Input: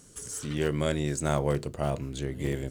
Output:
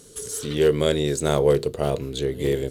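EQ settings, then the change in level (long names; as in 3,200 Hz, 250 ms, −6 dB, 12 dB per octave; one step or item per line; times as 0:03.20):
parametric band 440 Hz +13 dB 0.46 octaves
parametric band 3,800 Hz +9.5 dB 0.63 octaves
parametric band 12,000 Hz +12 dB 0.34 octaves
+2.5 dB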